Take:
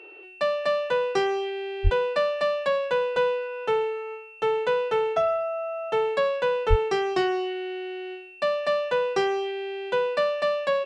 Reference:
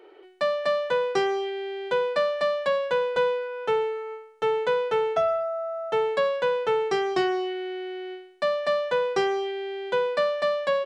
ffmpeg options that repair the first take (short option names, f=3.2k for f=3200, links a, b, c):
-filter_complex "[0:a]bandreject=f=2.7k:w=30,asplit=3[a][b][c];[a]afade=t=out:st=1.83:d=0.02[d];[b]highpass=f=140:w=0.5412,highpass=f=140:w=1.3066,afade=t=in:st=1.83:d=0.02,afade=t=out:st=1.95:d=0.02[e];[c]afade=t=in:st=1.95:d=0.02[f];[d][e][f]amix=inputs=3:normalize=0,asplit=3[g][h][i];[g]afade=t=out:st=6.69:d=0.02[j];[h]highpass=f=140:w=0.5412,highpass=f=140:w=1.3066,afade=t=in:st=6.69:d=0.02,afade=t=out:st=6.81:d=0.02[k];[i]afade=t=in:st=6.81:d=0.02[l];[j][k][l]amix=inputs=3:normalize=0"